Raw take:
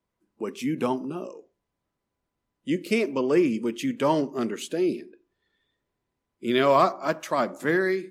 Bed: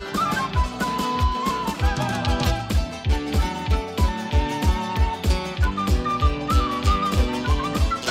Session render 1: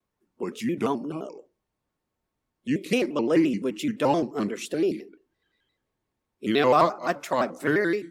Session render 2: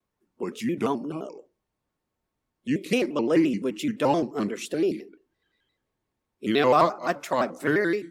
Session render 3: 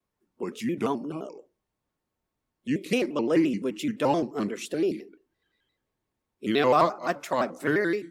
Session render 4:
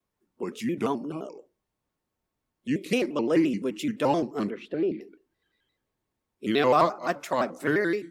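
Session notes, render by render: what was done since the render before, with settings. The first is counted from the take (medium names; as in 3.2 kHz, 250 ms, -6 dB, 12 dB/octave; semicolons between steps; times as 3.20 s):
vibrato with a chosen wave square 5.8 Hz, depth 160 cents
no audible change
trim -1.5 dB
4.50–5.01 s: distance through air 380 m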